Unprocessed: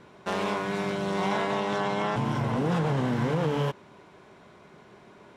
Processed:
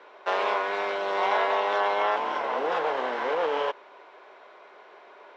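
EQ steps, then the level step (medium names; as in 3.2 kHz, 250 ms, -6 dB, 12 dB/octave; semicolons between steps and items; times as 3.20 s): high-pass 470 Hz 24 dB/octave; distance through air 190 m; +6.0 dB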